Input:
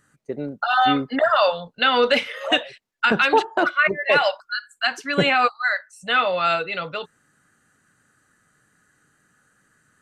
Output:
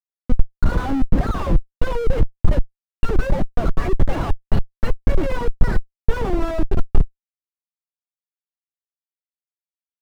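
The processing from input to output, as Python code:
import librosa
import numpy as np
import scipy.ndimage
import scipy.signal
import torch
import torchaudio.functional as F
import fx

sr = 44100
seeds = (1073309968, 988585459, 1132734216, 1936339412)

y = fx.pitch_keep_formants(x, sr, semitones=11.5)
y = fx.schmitt(y, sr, flips_db=-23.0)
y = fx.tilt_eq(y, sr, slope=-4.5)
y = F.gain(torch.from_numpy(y), -3.5).numpy()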